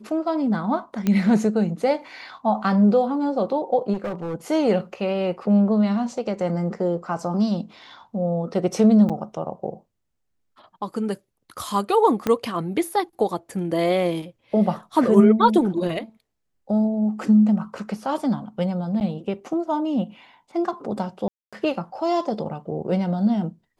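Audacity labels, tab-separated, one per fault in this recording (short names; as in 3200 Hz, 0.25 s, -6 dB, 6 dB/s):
1.070000	1.070000	pop -10 dBFS
3.930000	4.350000	clipped -24 dBFS
9.090000	9.100000	gap 6.6 ms
12.270000	12.270000	pop -9 dBFS
19.000000	19.010000	gap 9.1 ms
21.280000	21.530000	gap 0.246 s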